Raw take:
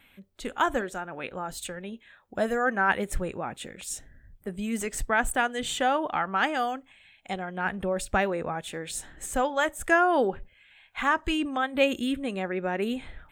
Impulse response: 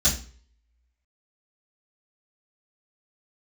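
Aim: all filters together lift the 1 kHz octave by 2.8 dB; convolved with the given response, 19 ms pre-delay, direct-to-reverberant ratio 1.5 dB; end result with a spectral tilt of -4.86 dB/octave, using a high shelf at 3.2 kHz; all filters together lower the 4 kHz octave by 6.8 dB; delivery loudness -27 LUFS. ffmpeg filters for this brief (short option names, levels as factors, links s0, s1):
-filter_complex "[0:a]equalizer=f=1000:t=o:g=5,highshelf=f=3200:g=-7.5,equalizer=f=4000:t=o:g=-5,asplit=2[s0][s1];[1:a]atrim=start_sample=2205,adelay=19[s2];[s1][s2]afir=irnorm=-1:irlink=0,volume=0.2[s3];[s0][s3]amix=inputs=2:normalize=0,volume=0.668"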